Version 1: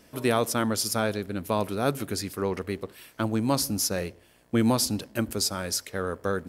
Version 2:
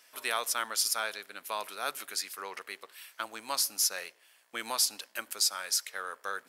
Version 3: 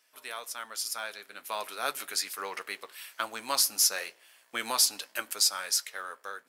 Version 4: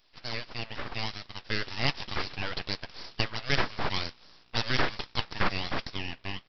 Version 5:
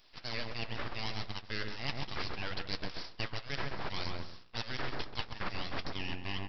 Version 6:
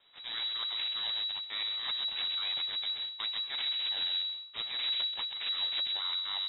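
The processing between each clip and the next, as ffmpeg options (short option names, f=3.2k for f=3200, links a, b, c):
-af "highpass=1.2k"
-af "dynaudnorm=f=570:g=5:m=15dB,acrusher=bits=8:mode=log:mix=0:aa=0.000001,flanger=delay=6.4:depth=2:regen=-64:speed=0.38:shape=triangular,volume=-4dB"
-af "aresample=11025,aeval=exprs='abs(val(0))':c=same,aresample=44100,crystalizer=i=1.5:c=0,volume=5dB"
-filter_complex "[0:a]asplit=2[a][b];[b]adelay=134,lowpass=f=1.1k:p=1,volume=-5dB,asplit=2[c][d];[d]adelay=134,lowpass=f=1.1k:p=1,volume=0.24,asplit=2[e][f];[f]adelay=134,lowpass=f=1.1k:p=1,volume=0.24[g];[a][c][e][g]amix=inputs=4:normalize=0,areverse,acompressor=threshold=-34dB:ratio=10,areverse,volume=3dB"
-filter_complex "[0:a]asplit=2[a][b];[b]acrusher=samples=33:mix=1:aa=0.000001,volume=-3dB[c];[a][c]amix=inputs=2:normalize=0,lowpass=f=3.3k:t=q:w=0.5098,lowpass=f=3.3k:t=q:w=0.6013,lowpass=f=3.3k:t=q:w=0.9,lowpass=f=3.3k:t=q:w=2.563,afreqshift=-3900,volume=-3dB"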